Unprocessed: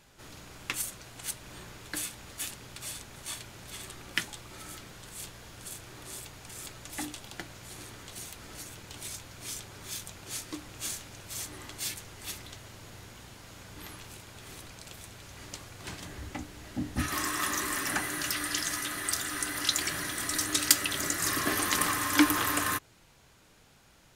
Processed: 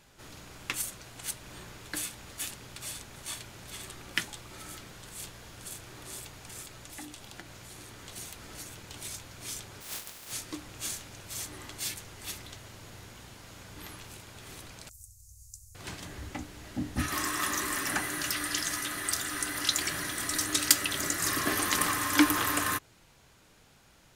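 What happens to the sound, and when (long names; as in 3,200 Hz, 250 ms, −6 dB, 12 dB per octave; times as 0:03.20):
0:06.62–0:08.03: downward compressor 2 to 1, threshold −44 dBFS
0:09.80–0:10.31: compressing power law on the bin magnitudes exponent 0.17
0:14.89–0:15.75: inverse Chebyshev band-stop filter 170–3,500 Hz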